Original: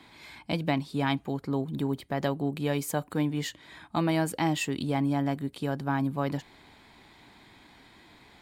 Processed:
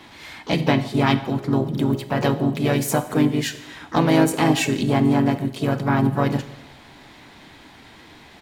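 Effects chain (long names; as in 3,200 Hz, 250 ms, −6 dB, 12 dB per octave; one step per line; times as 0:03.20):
coupled-rooms reverb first 0.78 s, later 2.4 s, from −18 dB, DRR 9.5 dB
pitch-shifted copies added −3 semitones −5 dB, +5 semitones −13 dB, +7 semitones −13 dB
level +7 dB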